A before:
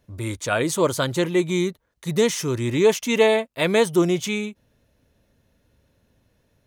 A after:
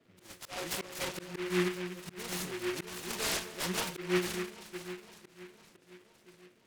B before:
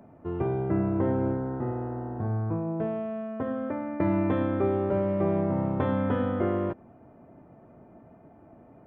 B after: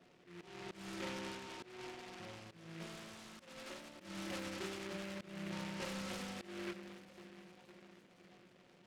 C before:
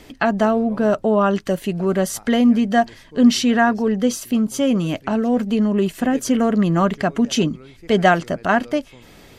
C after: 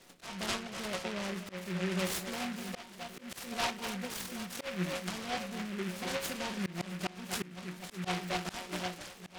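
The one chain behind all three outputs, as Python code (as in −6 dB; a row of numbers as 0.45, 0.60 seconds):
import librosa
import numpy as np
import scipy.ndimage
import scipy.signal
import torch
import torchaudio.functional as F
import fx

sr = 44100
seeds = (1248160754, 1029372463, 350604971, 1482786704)

p1 = fx.freq_compress(x, sr, knee_hz=1900.0, ratio=4.0)
p2 = fx.low_shelf(p1, sr, hz=210.0, db=-9.0)
p3 = fx.stiff_resonator(p2, sr, f0_hz=180.0, decay_s=0.31, stiffness=0.002)
p4 = p3 + fx.echo_alternate(p3, sr, ms=255, hz=1400.0, feedback_pct=75, wet_db=-10.5, dry=0)
p5 = fx.auto_swell(p4, sr, attack_ms=224.0)
p6 = fx.dmg_noise_band(p5, sr, seeds[0], low_hz=110.0, high_hz=630.0, level_db=-69.0)
y = fx.noise_mod_delay(p6, sr, seeds[1], noise_hz=1800.0, depth_ms=0.2)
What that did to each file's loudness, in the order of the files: −14.0, −18.5, −18.5 LU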